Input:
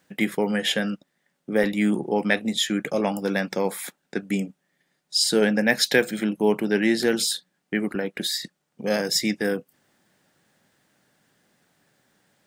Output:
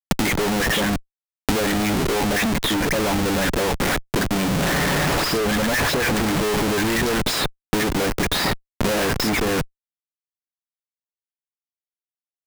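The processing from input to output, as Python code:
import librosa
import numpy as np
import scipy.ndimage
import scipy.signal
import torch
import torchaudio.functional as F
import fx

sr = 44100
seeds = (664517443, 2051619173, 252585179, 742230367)

y = fx.delta_mod(x, sr, bps=64000, step_db=-25.5, at=(4.45, 6.92))
y = fx.high_shelf(y, sr, hz=5000.0, db=-7.5)
y = y + 0.32 * np.pad(y, (int(7.1 * sr / 1000.0), 0))[:len(y)]
y = fx.dispersion(y, sr, late='highs', ms=94.0, hz=1300.0)
y = fx.schmitt(y, sr, flips_db=-35.0)
y = fx.band_squash(y, sr, depth_pct=100)
y = F.gain(torch.from_numpy(y), 5.5).numpy()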